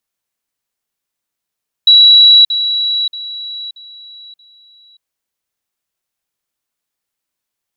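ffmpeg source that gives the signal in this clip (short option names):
-f lavfi -i "aevalsrc='pow(10,(-2.5-10*floor(t/0.63))/20)*sin(2*PI*3910*t)*clip(min(mod(t,0.63),0.58-mod(t,0.63))/0.005,0,1)':d=3.15:s=44100"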